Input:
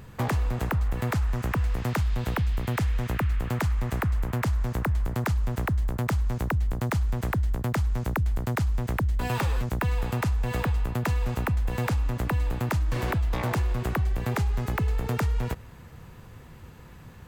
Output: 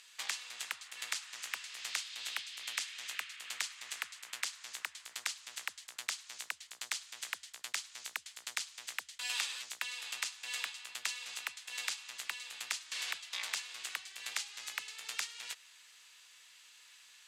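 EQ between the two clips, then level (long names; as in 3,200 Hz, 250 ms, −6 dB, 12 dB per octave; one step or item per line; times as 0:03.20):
flat-topped band-pass 5,400 Hz, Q 0.85
+6.0 dB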